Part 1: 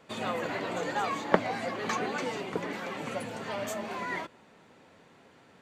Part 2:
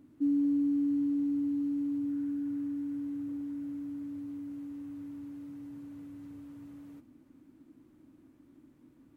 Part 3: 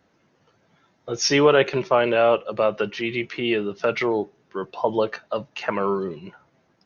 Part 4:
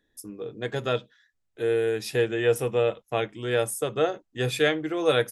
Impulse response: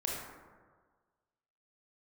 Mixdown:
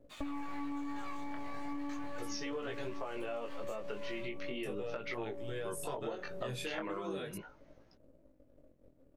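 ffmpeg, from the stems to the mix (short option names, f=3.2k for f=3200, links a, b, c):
-filter_complex "[0:a]highpass=1.2k,aeval=exprs='sgn(val(0))*max(abs(val(0))-0.00335,0)':c=same,volume=-4.5dB[a];[1:a]equalizer=f=150:w=0.32:g=9,alimiter=limit=-21dB:level=0:latency=1,aeval=exprs='0.0891*(cos(1*acos(clip(val(0)/0.0891,-1,1)))-cos(1*PI/2))+0.0251*(cos(3*acos(clip(val(0)/0.0891,-1,1)))-cos(3*PI/2))+0.0282*(cos(4*acos(clip(val(0)/0.0891,-1,1)))-cos(4*PI/2))+0.00891*(cos(8*acos(clip(val(0)/0.0891,-1,1)))-cos(8*PI/2))':c=same,volume=1dB[b];[2:a]adelay=1100,volume=-1.5dB[c];[3:a]adelay=2050,volume=-3.5dB,asplit=3[d][e][f];[d]atrim=end=2.88,asetpts=PTS-STARTPTS,afade=t=out:st=2.876:d=0.004:c=hsin[g];[e]atrim=start=2.88:end=4.63,asetpts=PTS-STARTPTS,volume=0[h];[f]atrim=start=4.63,asetpts=PTS-STARTPTS,afade=t=in:d=0.004:c=hsin[i];[g][h][i]concat=n=3:v=0:a=1[j];[b][c]amix=inputs=2:normalize=0,acompressor=threshold=-26dB:ratio=6,volume=0dB[k];[a][j]amix=inputs=2:normalize=0,alimiter=limit=-23dB:level=0:latency=1:release=36,volume=0dB[l];[k][l]amix=inputs=2:normalize=0,flanger=delay=17.5:depth=5.7:speed=0.38,acompressor=threshold=-36dB:ratio=6"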